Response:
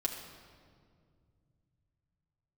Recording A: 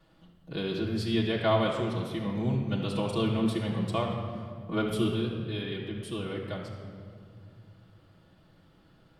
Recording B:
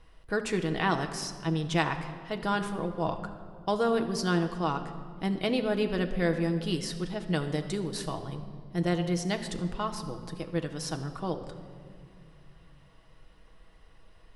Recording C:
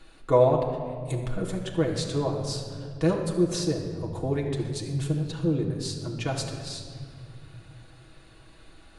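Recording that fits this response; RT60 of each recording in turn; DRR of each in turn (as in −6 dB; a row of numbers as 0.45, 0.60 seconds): C; 2.1, 2.3, 2.1 seconds; −6.5, 5.0, −1.5 decibels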